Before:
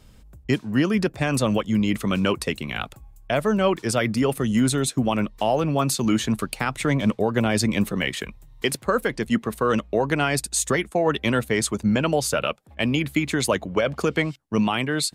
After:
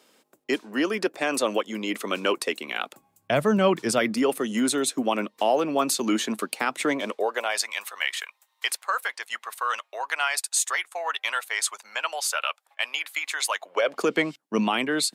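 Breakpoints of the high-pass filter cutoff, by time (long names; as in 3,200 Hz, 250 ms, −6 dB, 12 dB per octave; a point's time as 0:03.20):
high-pass filter 24 dB per octave
0:02.81 310 Hz
0:03.48 89 Hz
0:04.26 260 Hz
0:06.87 260 Hz
0:07.68 830 Hz
0:13.55 830 Hz
0:14.11 220 Hz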